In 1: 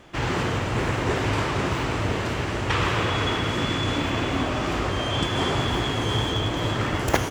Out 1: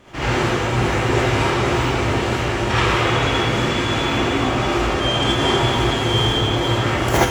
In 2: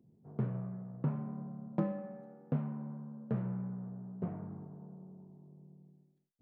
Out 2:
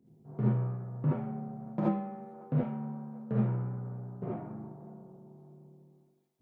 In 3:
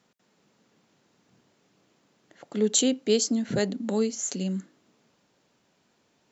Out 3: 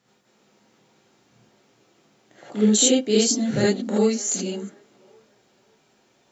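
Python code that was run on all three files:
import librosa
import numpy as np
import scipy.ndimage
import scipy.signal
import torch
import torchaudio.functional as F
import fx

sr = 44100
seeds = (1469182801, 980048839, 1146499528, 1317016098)

y = fx.echo_wet_bandpass(x, sr, ms=558, feedback_pct=32, hz=900.0, wet_db=-21.0)
y = fx.rev_gated(y, sr, seeds[0], gate_ms=100, shape='rising', drr_db=-7.0)
y = F.gain(torch.from_numpy(y), -1.5).numpy()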